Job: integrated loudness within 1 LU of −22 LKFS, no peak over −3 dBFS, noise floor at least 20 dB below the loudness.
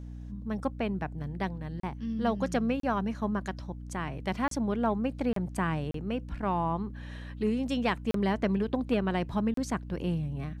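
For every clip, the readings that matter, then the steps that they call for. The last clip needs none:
number of dropouts 7; longest dropout 33 ms; mains hum 60 Hz; hum harmonics up to 300 Hz; level of the hum −39 dBFS; integrated loudness −31.5 LKFS; sample peak −14.0 dBFS; target loudness −22.0 LKFS
→ repair the gap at 0:01.80/0:02.80/0:04.48/0:05.33/0:05.91/0:08.11/0:09.54, 33 ms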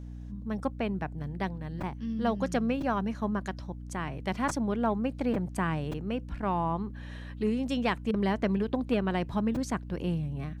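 number of dropouts 0; mains hum 60 Hz; hum harmonics up to 300 Hz; level of the hum −39 dBFS
→ mains-hum notches 60/120/180/240/300 Hz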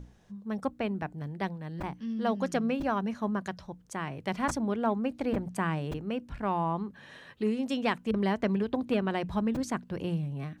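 mains hum none found; integrated loudness −32.0 LKFS; sample peak −13.5 dBFS; target loudness −22.0 LKFS
→ level +10 dB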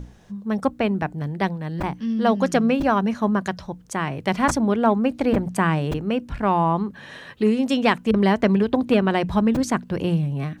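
integrated loudness −22.0 LKFS; sample peak −3.5 dBFS; background noise floor −46 dBFS

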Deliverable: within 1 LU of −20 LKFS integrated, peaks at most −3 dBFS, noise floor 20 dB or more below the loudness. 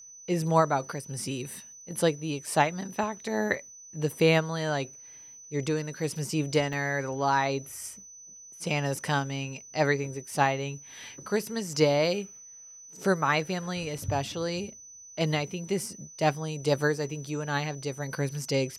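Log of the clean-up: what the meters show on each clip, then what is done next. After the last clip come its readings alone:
number of dropouts 3; longest dropout 3.0 ms; interfering tone 6,000 Hz; level of the tone −46 dBFS; integrated loudness −29.0 LKFS; sample peak −8.5 dBFS; target loudness −20.0 LKFS
→ repair the gap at 0:02.47/0:06.73/0:13.98, 3 ms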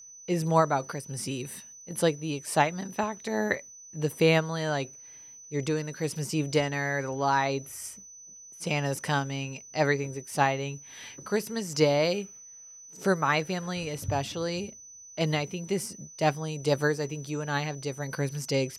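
number of dropouts 0; interfering tone 6,000 Hz; level of the tone −46 dBFS
→ notch filter 6,000 Hz, Q 30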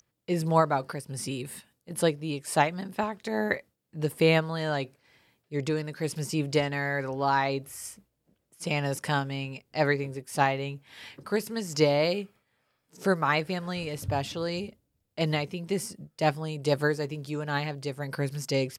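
interfering tone none found; integrated loudness −29.0 LKFS; sample peak −8.5 dBFS; target loudness −20.0 LKFS
→ level +9 dB
brickwall limiter −3 dBFS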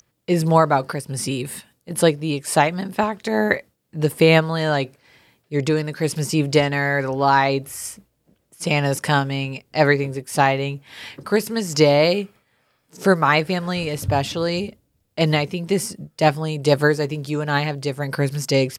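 integrated loudness −20.5 LKFS; sample peak −3.0 dBFS; background noise floor −69 dBFS

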